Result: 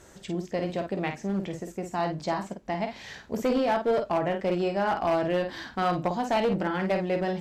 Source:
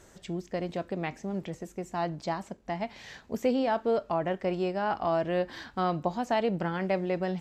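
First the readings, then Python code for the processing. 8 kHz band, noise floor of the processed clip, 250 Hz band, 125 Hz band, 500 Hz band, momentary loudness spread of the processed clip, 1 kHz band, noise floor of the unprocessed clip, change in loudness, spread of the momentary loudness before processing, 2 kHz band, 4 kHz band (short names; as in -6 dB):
n/a, -52 dBFS, +2.5 dB, +2.0 dB, +2.5 dB, 9 LU, +3.0 dB, -57 dBFS, +2.5 dB, 10 LU, +3.5 dB, +4.0 dB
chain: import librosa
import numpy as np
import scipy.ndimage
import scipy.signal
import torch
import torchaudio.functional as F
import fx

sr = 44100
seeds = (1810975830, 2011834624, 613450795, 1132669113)

y = fx.room_early_taps(x, sr, ms=(15, 51), db=(-11.0, -6.5))
y = fx.clip_asym(y, sr, top_db=-24.5, bottom_db=-19.5)
y = y * librosa.db_to_amplitude(2.5)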